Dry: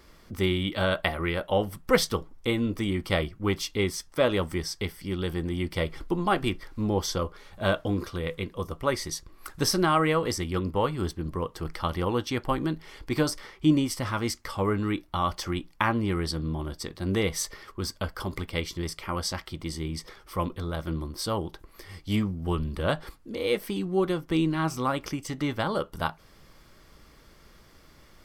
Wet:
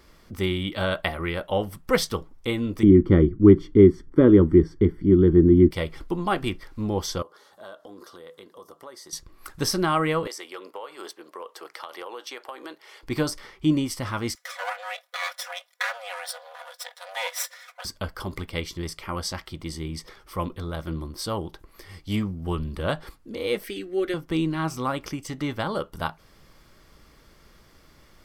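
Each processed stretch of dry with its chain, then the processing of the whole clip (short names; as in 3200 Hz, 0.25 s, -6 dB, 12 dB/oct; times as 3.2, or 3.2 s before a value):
2.83–5.71 polynomial smoothing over 41 samples + resonant low shelf 480 Hz +11 dB, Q 3
7.22–9.13 HPF 410 Hz + bell 2400 Hz -14.5 dB 0.52 oct + compressor 3:1, threshold -43 dBFS
10.27–13.03 HPF 440 Hz 24 dB/oct + compressor 10:1, threshold -32 dBFS
14.35–17.85 minimum comb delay 0.55 ms + brick-wall FIR high-pass 500 Hz + comb 4.1 ms, depth 99%
23.64–24.14 bell 1800 Hz +11 dB 0.99 oct + fixed phaser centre 400 Hz, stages 4
whole clip: dry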